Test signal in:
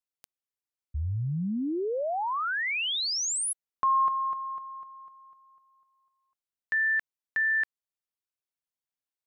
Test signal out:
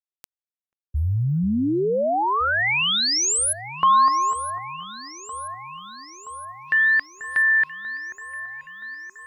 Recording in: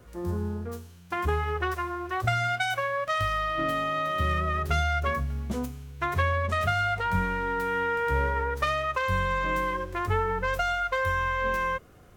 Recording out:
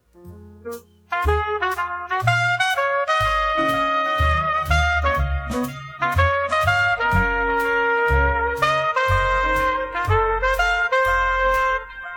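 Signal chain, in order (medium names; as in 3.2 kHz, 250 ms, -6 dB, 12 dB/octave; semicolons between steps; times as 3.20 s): echo whose repeats swap between lows and highs 487 ms, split 1.8 kHz, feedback 78%, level -13 dB; bit crusher 10-bit; spectral noise reduction 20 dB; trim +8 dB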